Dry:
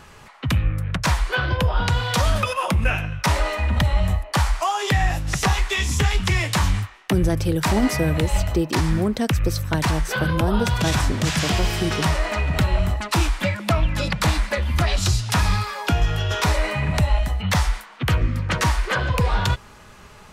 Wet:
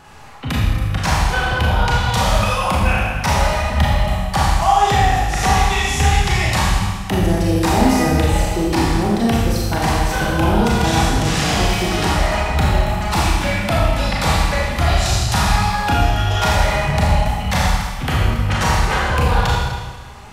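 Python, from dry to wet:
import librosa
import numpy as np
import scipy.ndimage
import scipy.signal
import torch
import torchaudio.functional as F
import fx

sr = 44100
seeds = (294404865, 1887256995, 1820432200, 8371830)

y = fx.peak_eq(x, sr, hz=790.0, db=11.0, octaves=0.21)
y = fx.rev_schroeder(y, sr, rt60_s=1.4, comb_ms=27, drr_db=-4.5)
y = y * 10.0 ** (-1.5 / 20.0)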